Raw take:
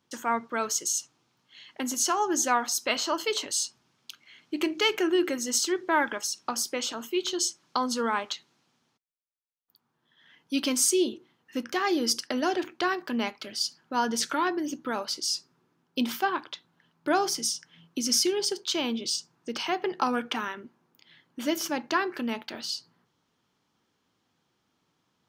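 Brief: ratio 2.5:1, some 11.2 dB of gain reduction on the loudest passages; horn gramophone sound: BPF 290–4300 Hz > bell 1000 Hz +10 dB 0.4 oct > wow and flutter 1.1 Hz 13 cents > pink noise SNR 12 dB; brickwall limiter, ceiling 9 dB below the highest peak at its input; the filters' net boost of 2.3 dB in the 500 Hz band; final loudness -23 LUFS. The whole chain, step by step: bell 500 Hz +4 dB; compressor 2.5:1, threshold -36 dBFS; limiter -27 dBFS; BPF 290–4300 Hz; bell 1000 Hz +10 dB 0.4 oct; wow and flutter 1.1 Hz 13 cents; pink noise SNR 12 dB; gain +15 dB

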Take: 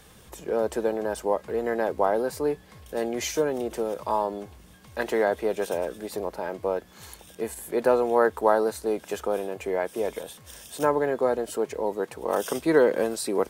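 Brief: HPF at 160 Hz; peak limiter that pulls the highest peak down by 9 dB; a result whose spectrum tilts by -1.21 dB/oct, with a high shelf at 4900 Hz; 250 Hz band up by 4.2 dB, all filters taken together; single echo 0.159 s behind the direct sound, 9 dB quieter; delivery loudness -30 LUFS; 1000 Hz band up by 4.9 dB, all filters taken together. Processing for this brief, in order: HPF 160 Hz; bell 250 Hz +6 dB; bell 1000 Hz +6 dB; high shelf 4900 Hz -4.5 dB; limiter -12 dBFS; echo 0.159 s -9 dB; gain -5 dB

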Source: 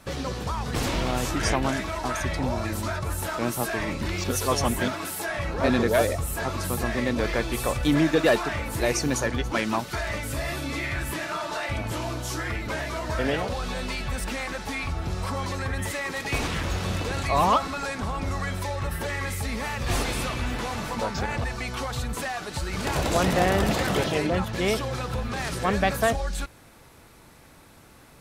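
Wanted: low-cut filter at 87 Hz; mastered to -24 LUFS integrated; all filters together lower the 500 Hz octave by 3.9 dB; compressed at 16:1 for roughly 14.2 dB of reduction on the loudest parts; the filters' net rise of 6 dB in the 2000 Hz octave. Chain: HPF 87 Hz; bell 500 Hz -5.5 dB; bell 2000 Hz +7.5 dB; compressor 16:1, threshold -30 dBFS; gain +9.5 dB

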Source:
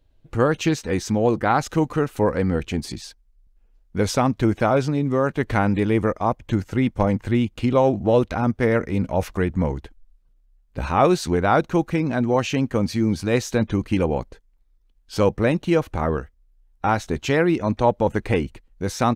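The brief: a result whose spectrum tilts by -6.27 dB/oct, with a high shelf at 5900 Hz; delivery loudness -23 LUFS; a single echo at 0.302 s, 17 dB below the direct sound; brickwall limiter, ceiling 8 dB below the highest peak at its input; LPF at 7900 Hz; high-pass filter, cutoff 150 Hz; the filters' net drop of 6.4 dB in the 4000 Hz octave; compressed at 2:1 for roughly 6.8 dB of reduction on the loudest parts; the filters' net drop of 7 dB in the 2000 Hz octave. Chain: HPF 150 Hz; LPF 7900 Hz; bell 2000 Hz -8.5 dB; bell 4000 Hz -8 dB; high shelf 5900 Hz +6 dB; compressor 2:1, threshold -26 dBFS; limiter -19 dBFS; echo 0.302 s -17 dB; gain +7.5 dB

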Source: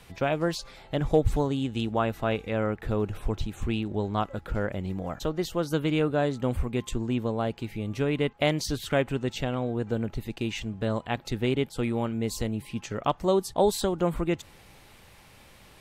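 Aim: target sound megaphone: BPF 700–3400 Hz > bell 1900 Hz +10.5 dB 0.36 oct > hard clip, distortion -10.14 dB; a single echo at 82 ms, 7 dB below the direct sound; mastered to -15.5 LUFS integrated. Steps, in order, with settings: BPF 700–3400 Hz; bell 1900 Hz +10.5 dB 0.36 oct; echo 82 ms -7 dB; hard clip -25 dBFS; gain +19.5 dB

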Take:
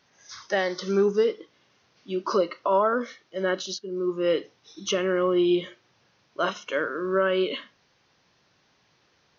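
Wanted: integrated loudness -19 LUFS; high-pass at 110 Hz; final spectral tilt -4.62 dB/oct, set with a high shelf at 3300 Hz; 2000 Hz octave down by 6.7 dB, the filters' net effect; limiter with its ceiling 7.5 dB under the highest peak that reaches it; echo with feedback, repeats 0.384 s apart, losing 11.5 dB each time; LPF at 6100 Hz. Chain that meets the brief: HPF 110 Hz; LPF 6100 Hz; bell 2000 Hz -7 dB; high shelf 3300 Hz -8 dB; limiter -19.5 dBFS; feedback echo 0.384 s, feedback 27%, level -11.5 dB; gain +11 dB

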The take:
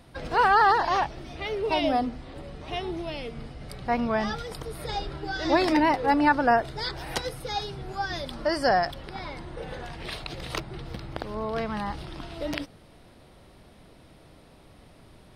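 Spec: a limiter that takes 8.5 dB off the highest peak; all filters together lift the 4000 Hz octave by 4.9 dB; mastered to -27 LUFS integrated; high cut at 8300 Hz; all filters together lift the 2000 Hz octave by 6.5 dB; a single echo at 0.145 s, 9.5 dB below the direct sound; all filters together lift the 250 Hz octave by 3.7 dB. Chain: LPF 8300 Hz; bell 250 Hz +4.5 dB; bell 2000 Hz +7.5 dB; bell 4000 Hz +4 dB; limiter -13.5 dBFS; echo 0.145 s -9.5 dB; gain -1 dB

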